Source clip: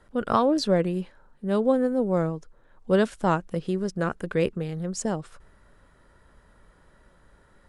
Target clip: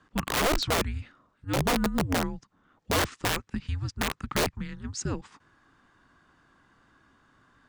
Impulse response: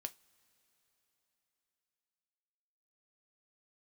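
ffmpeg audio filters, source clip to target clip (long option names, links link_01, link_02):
-af "highpass=frequency=260:width=0.5412,highpass=frequency=260:width=1.3066,equalizer=frequency=260:width_type=q:width=4:gain=-4,equalizer=frequency=940:width_type=q:width=4:gain=-9,equalizer=frequency=2100:width_type=q:width=4:gain=6,lowpass=frequency=7500:width=0.5412,lowpass=frequency=7500:width=1.3066,afreqshift=-290,aeval=exprs='(mod(9.44*val(0)+1,2)-1)/9.44':channel_layout=same"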